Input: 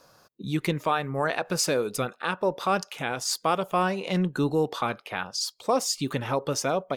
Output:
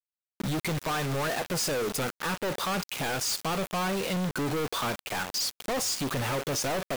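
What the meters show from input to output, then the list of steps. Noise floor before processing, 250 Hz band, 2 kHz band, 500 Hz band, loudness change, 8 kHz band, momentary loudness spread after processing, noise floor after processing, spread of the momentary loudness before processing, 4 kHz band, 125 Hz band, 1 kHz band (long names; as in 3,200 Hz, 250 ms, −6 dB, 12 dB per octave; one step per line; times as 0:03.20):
−60 dBFS, −3.0 dB, −0.5 dB, −4.5 dB, −2.5 dB, 0.0 dB, 3 LU, below −85 dBFS, 5 LU, +0.5 dB, −1.5 dB, −4.5 dB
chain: delay with a high-pass on its return 65 ms, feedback 36%, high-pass 1,700 Hz, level −18.5 dB
log-companded quantiser 2 bits
level −3 dB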